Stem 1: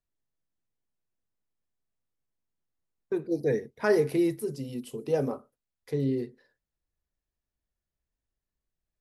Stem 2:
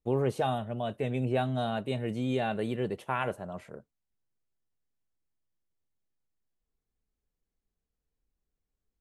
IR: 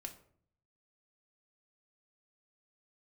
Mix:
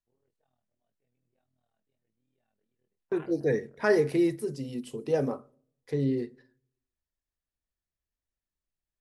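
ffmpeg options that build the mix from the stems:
-filter_complex "[0:a]lowpass=frequency=10000:width=0.5412,lowpass=frequency=10000:width=1.3066,agate=range=-6dB:threshold=-53dB:ratio=16:detection=peak,volume=-1dB,asplit=3[link_01][link_02][link_03];[link_02]volume=-10.5dB[link_04];[1:a]tremolo=f=39:d=0.824,flanger=delay=16.5:depth=7.6:speed=0.88,volume=-11.5dB[link_05];[link_03]apad=whole_len=397292[link_06];[link_05][link_06]sidechaingate=range=-33dB:threshold=-49dB:ratio=16:detection=peak[link_07];[2:a]atrim=start_sample=2205[link_08];[link_04][link_08]afir=irnorm=-1:irlink=0[link_09];[link_01][link_07][link_09]amix=inputs=3:normalize=0,equalizer=frequency=1800:width_type=o:width=0.3:gain=3.5"

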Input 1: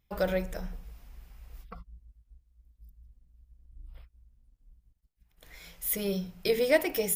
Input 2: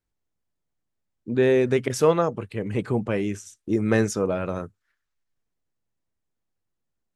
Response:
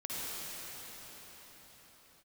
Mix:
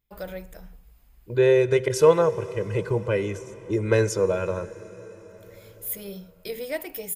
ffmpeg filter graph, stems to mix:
-filter_complex "[0:a]highshelf=frequency=9300:gain=9,bandreject=frequency=5700:width=7.4,volume=-7dB[link_01];[1:a]agate=range=-9dB:threshold=-31dB:ratio=16:detection=peak,aecho=1:1:2:0.93,volume=-2.5dB,asplit=3[link_02][link_03][link_04];[link_03]volume=-19dB[link_05];[link_04]apad=whole_len=315578[link_06];[link_01][link_06]sidechaincompress=threshold=-22dB:ratio=8:attack=16:release=390[link_07];[2:a]atrim=start_sample=2205[link_08];[link_05][link_08]afir=irnorm=-1:irlink=0[link_09];[link_07][link_02][link_09]amix=inputs=3:normalize=0"

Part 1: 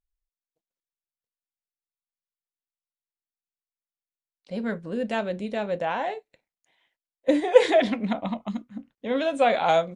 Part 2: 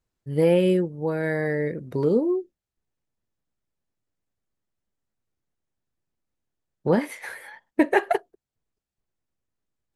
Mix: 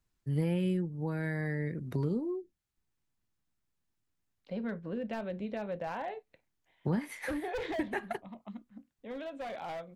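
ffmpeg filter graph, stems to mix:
ffmpeg -i stem1.wav -i stem2.wav -filter_complex "[0:a]lowpass=3100,asoftclip=type=hard:threshold=-20.5dB,volume=-2dB,afade=type=out:start_time=7.67:duration=0.38:silence=0.266073[link_01];[1:a]equalizer=frequency=530:width=1.6:gain=-8.5,volume=1dB[link_02];[link_01][link_02]amix=inputs=2:normalize=0,acrossover=split=150[link_03][link_04];[link_04]acompressor=threshold=-37dB:ratio=3[link_05];[link_03][link_05]amix=inputs=2:normalize=0" out.wav

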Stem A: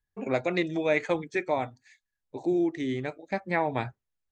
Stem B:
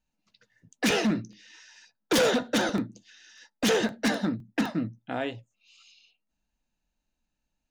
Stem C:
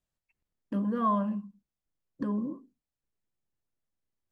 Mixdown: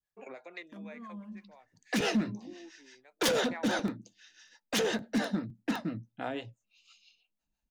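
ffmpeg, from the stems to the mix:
ffmpeg -i stem1.wav -i stem2.wav -i stem3.wav -filter_complex "[0:a]highpass=460,aeval=exprs='val(0)*pow(10,-30*if(lt(mod(0.57*n/s,1),2*abs(0.57)/1000),1-mod(0.57*n/s,1)/(2*abs(0.57)/1000),(mod(0.57*n/s,1)-2*abs(0.57)/1000)/(1-2*abs(0.57)/1000))/20)':channel_layout=same,volume=0dB[link_01];[1:a]adelay=1100,volume=-1.5dB[link_02];[2:a]acrossover=split=330|3000[link_03][link_04][link_05];[link_04]acompressor=threshold=-45dB:ratio=3[link_06];[link_03][link_06][link_05]amix=inputs=3:normalize=0,volume=-7dB[link_07];[link_01][link_07]amix=inputs=2:normalize=0,adynamicequalizer=threshold=0.00355:dfrequency=1400:dqfactor=0.8:tfrequency=1400:tqfactor=0.8:attack=5:release=100:ratio=0.375:range=2.5:mode=boostabove:tftype=bell,acompressor=threshold=-38dB:ratio=6,volume=0dB[link_08];[link_02][link_08]amix=inputs=2:normalize=0,acrossover=split=440[link_09][link_10];[link_09]aeval=exprs='val(0)*(1-0.7/2+0.7/2*cos(2*PI*6*n/s))':channel_layout=same[link_11];[link_10]aeval=exprs='val(0)*(1-0.7/2-0.7/2*cos(2*PI*6*n/s))':channel_layout=same[link_12];[link_11][link_12]amix=inputs=2:normalize=0" out.wav

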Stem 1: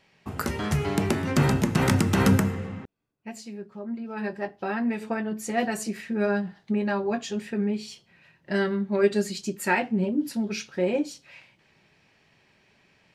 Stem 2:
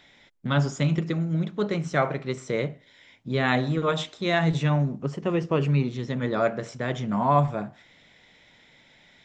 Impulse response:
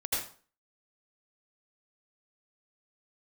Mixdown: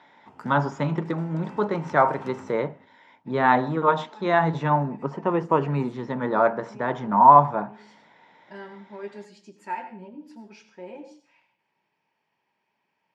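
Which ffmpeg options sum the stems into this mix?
-filter_complex "[0:a]equalizer=frequency=4000:width=7:gain=-7,volume=-17dB,asplit=2[link_01][link_02];[link_02]volume=-13.5dB[link_03];[1:a]highshelf=frequency=2000:width_type=q:width=1.5:gain=-7,volume=1.5dB,asplit=2[link_04][link_05];[link_05]apad=whole_len=579611[link_06];[link_01][link_06]sidechaincompress=threshold=-35dB:ratio=8:attack=16:release=233[link_07];[2:a]atrim=start_sample=2205[link_08];[link_03][link_08]afir=irnorm=-1:irlink=0[link_09];[link_07][link_04][link_09]amix=inputs=3:normalize=0,highpass=190,lowpass=5200,equalizer=frequency=920:width=4.4:gain=14"

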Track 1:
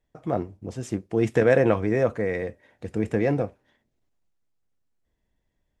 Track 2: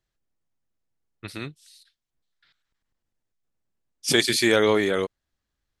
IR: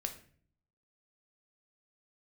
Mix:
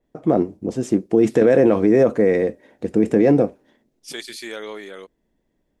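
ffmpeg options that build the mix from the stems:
-filter_complex "[0:a]equalizer=frequency=300:width_type=o:width=2.4:gain=12,alimiter=limit=-7dB:level=0:latency=1:release=40,adynamicequalizer=threshold=0.01:dfrequency=3400:dqfactor=0.7:tfrequency=3400:tqfactor=0.7:attack=5:release=100:ratio=0.375:range=3:mode=boostabove:tftype=highshelf,volume=1.5dB[link_01];[1:a]highpass=frequency=260:poles=1,volume=-12dB[link_02];[link_01][link_02]amix=inputs=2:normalize=0,equalizer=frequency=100:width_type=o:width=0.7:gain=-8.5"

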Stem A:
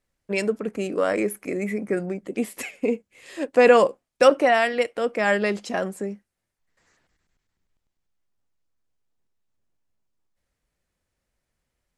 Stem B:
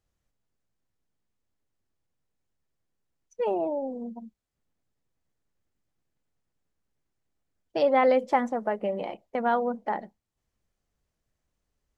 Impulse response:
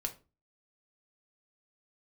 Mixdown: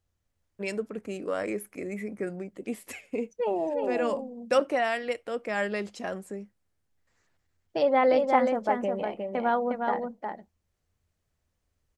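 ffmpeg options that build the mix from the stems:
-filter_complex "[0:a]adelay=300,volume=-8dB[link_01];[1:a]volume=-1dB,asplit=3[link_02][link_03][link_04];[link_03]volume=-4.5dB[link_05];[link_04]apad=whole_len=541388[link_06];[link_01][link_06]sidechaincompress=threshold=-37dB:ratio=5:attack=16:release=750[link_07];[link_05]aecho=0:1:359:1[link_08];[link_07][link_02][link_08]amix=inputs=3:normalize=0,equalizer=frequency=86:width=3.8:gain=10"

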